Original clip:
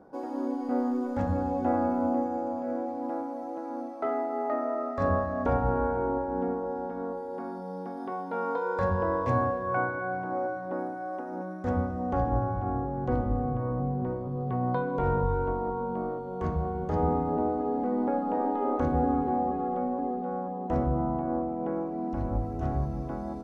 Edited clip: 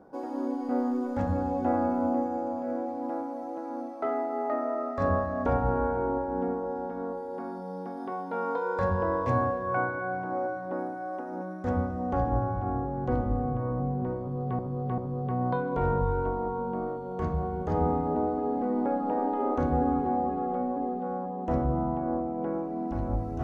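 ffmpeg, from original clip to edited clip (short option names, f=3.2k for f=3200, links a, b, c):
-filter_complex "[0:a]asplit=3[a][b][c];[a]atrim=end=14.592[d];[b]atrim=start=14.198:end=14.592[e];[c]atrim=start=14.198[f];[d][e]acrossfade=d=0.004:c1=hsin:c2=hsin[g];[g][f]acrossfade=d=0.004:c1=hsin:c2=hsin"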